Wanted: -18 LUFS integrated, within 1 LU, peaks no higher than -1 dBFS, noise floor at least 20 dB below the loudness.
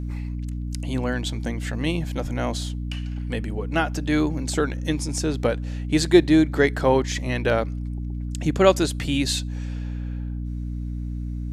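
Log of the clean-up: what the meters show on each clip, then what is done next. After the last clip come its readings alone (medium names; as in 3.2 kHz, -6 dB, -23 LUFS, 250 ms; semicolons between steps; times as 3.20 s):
hum 60 Hz; highest harmonic 300 Hz; hum level -27 dBFS; loudness -24.5 LUFS; peak level -2.0 dBFS; loudness target -18.0 LUFS
-> hum notches 60/120/180/240/300 Hz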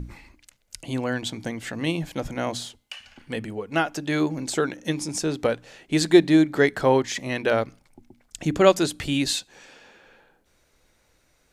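hum not found; loudness -24.0 LUFS; peak level -2.0 dBFS; loudness target -18.0 LUFS
-> trim +6 dB; peak limiter -1 dBFS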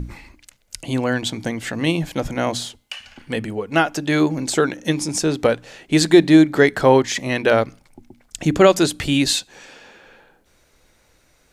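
loudness -18.5 LUFS; peak level -1.0 dBFS; noise floor -59 dBFS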